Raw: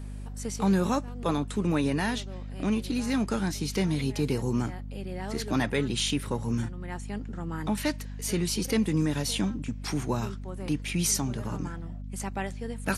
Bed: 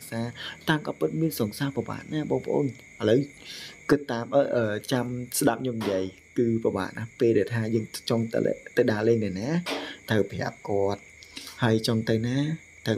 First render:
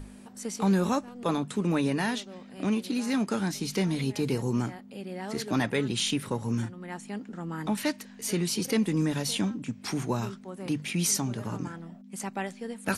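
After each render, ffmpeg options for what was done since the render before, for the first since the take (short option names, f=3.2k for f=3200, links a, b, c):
-af "bandreject=f=50:t=h:w=6,bandreject=f=100:t=h:w=6,bandreject=f=150:t=h:w=6"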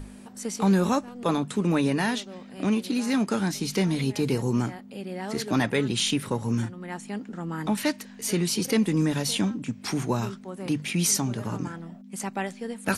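-af "volume=3dB"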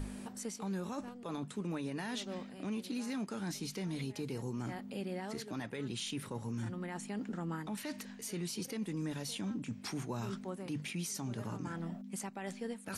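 -af "areverse,acompressor=threshold=-34dB:ratio=8,areverse,alimiter=level_in=6.5dB:limit=-24dB:level=0:latency=1:release=91,volume=-6.5dB"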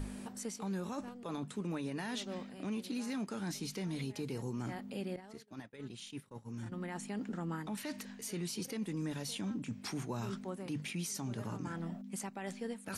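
-filter_complex "[0:a]asettb=1/sr,asplit=3[a][b][c];[a]atrim=end=5.164[d];[b]atrim=start=5.16:end=6.72,asetpts=PTS-STARTPTS,afade=t=in:d=0.004:c=qsin,afade=t=out:st=1.556:d=0.004:c=qsin,agate=range=-33dB:threshold=-34dB:ratio=3:release=100:detection=peak[e];[c]atrim=start=6.716[f];[d][e]acrossfade=d=0.004:c1=hsin:c2=qsin[g];[g][f]acrossfade=d=0.004:c1=qsin:c2=hsin"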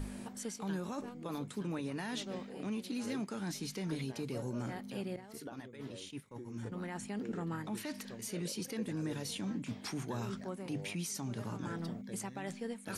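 -filter_complex "[1:a]volume=-25dB[a];[0:a][a]amix=inputs=2:normalize=0"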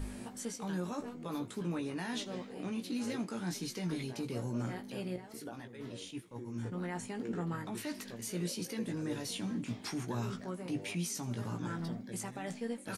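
-filter_complex "[0:a]asplit=2[a][b];[b]adelay=17,volume=-5.5dB[c];[a][c]amix=inputs=2:normalize=0,asplit=5[d][e][f][g][h];[e]adelay=80,afreqshift=57,volume=-21.5dB[i];[f]adelay=160,afreqshift=114,volume=-27.3dB[j];[g]adelay=240,afreqshift=171,volume=-33.2dB[k];[h]adelay=320,afreqshift=228,volume=-39dB[l];[d][i][j][k][l]amix=inputs=5:normalize=0"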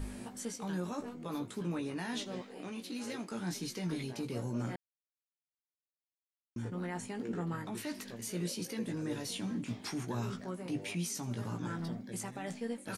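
-filter_complex "[0:a]asettb=1/sr,asplit=3[a][b][c];[a]atrim=end=2.414[d];[b]atrim=start=2.41:end=3.32,asetpts=PTS-STARTPTS,afade=t=in:d=0.004:c=qsin,afade=t=out:st=0.906:d=0.004:c=qsin,equalizer=f=66:w=0.33:g=-11[e];[c]atrim=start=3.316[f];[d][e]acrossfade=d=0.004:c1=hsin:c2=qsin[g];[g][f]acrossfade=d=0.004:c1=qsin:c2=hsin,asplit=3[h][i][j];[h]atrim=end=4.76,asetpts=PTS-STARTPTS,afade=t=out:st=4.756:d=0.004:c=hsin[k];[i]atrim=start=4.76:end=6.56,asetpts=PTS-STARTPTS,volume=0[l];[j]atrim=start=6.56,asetpts=PTS-STARTPTS,afade=t=in:d=0.004:c=hsin[m];[k][l][m]concat=n=3:v=0:a=1"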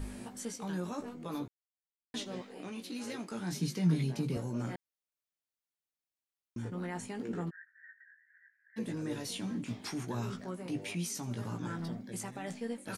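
-filter_complex "[0:a]asettb=1/sr,asplit=3[a][b][c];[a]atrim=end=3.524[d];[b]atrim=start=3.52:end=4.37,asetpts=PTS-STARTPTS,afade=t=in:d=0.004:c=qsin,afade=t=out:st=0.846:d=0.004:c=qsin,highpass=f=150:t=q:w=4.9[e];[c]atrim=start=4.366[f];[d][e]acrossfade=d=0.004:c1=hsin:c2=qsin[g];[g][f]acrossfade=d=0.004:c1=qsin:c2=hsin,asplit=3[h][i][j];[h]afade=t=out:st=7.49:d=0.02[k];[i]asuperpass=centerf=1700:order=8:qfactor=4.6,afade=t=in:st=7.49:d=0.02,afade=t=out:st=8.76:d=0.02[l];[j]afade=t=in:st=8.76:d=0.02[m];[k][l][m]amix=inputs=3:normalize=0,asplit=3[n][o][p];[n]atrim=end=1.48,asetpts=PTS-STARTPTS,afade=t=out:st=1.476:d=0.004:c=hsin[q];[o]atrim=start=1.48:end=2.14,asetpts=PTS-STARTPTS,volume=0[r];[p]atrim=start=2.14,asetpts=PTS-STARTPTS,afade=t=in:d=0.004:c=hsin[s];[q][r][s]concat=n=3:v=0:a=1"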